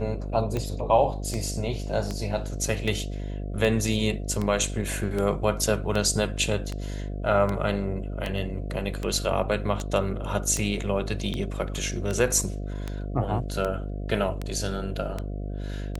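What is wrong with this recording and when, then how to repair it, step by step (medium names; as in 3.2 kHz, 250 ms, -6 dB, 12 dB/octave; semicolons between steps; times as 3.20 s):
buzz 50 Hz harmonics 14 -32 dBFS
tick 78 rpm -16 dBFS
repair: de-click; de-hum 50 Hz, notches 14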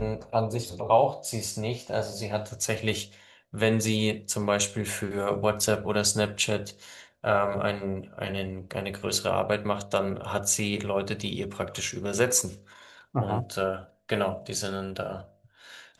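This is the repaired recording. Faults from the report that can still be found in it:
nothing left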